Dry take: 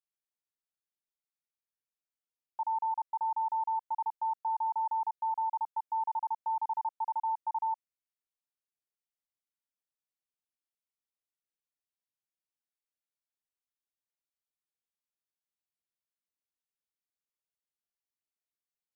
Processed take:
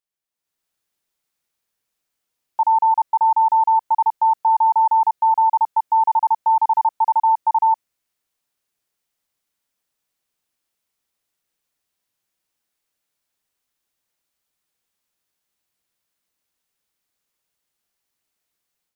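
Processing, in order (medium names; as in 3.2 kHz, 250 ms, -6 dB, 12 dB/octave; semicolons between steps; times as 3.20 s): level rider gain up to 12 dB; trim +4 dB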